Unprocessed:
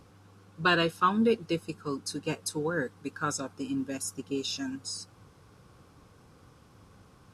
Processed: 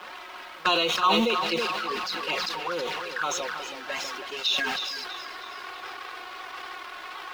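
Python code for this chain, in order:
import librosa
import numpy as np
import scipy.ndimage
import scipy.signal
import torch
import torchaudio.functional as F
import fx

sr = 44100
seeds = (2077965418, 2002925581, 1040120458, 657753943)

p1 = x + 0.5 * 10.0 ** (-35.5 / 20.0) * np.sign(x)
p2 = scipy.signal.sosfilt(scipy.signal.butter(4, 4900.0, 'lowpass', fs=sr, output='sos'), p1)
p3 = fx.env_lowpass(p2, sr, base_hz=2800.0, full_db=-20.5)
p4 = scipy.signal.sosfilt(scipy.signal.butter(2, 830.0, 'highpass', fs=sr, output='sos'), p3)
p5 = p4 + 0.57 * np.pad(p4, (int(5.5 * sr / 1000.0), 0))[:len(p4)]
p6 = fx.leveller(p5, sr, passes=1)
p7 = fx.rider(p6, sr, range_db=4, speed_s=0.5)
p8 = p6 + (p7 * 10.0 ** (-3.0 / 20.0))
p9 = fx.env_flanger(p8, sr, rest_ms=6.3, full_db=-22.0)
p10 = fx.quant_dither(p9, sr, seeds[0], bits=10, dither='none')
p11 = p10 + fx.echo_feedback(p10, sr, ms=322, feedback_pct=51, wet_db=-10, dry=0)
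y = fx.sustainer(p11, sr, db_per_s=22.0)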